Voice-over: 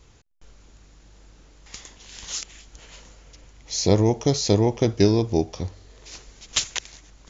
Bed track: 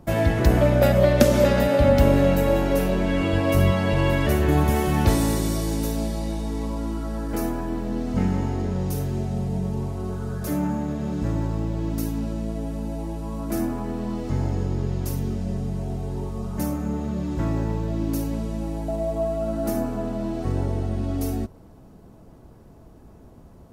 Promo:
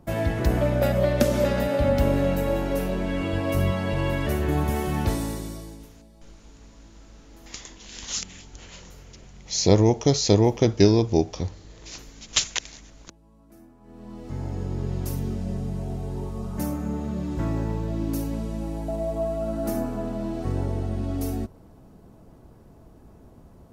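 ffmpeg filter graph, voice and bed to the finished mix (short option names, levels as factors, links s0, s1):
-filter_complex "[0:a]adelay=5800,volume=1.12[s0];[1:a]volume=8.91,afade=t=out:st=4.96:d=0.94:silence=0.0891251,afade=t=in:st=13.8:d=1.17:silence=0.0668344[s1];[s0][s1]amix=inputs=2:normalize=0"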